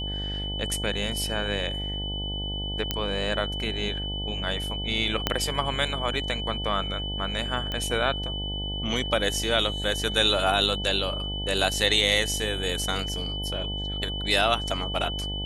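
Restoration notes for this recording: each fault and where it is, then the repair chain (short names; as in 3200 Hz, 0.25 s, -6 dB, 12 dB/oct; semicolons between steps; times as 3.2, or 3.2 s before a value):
buzz 50 Hz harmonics 18 -33 dBFS
tone 3000 Hz -32 dBFS
2.91 pop -9 dBFS
5.27 pop -7 dBFS
7.72 pop -17 dBFS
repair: de-click; de-hum 50 Hz, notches 18; notch 3000 Hz, Q 30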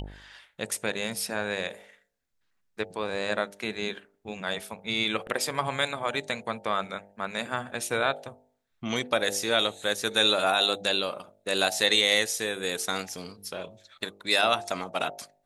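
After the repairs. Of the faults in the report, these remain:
5.27 pop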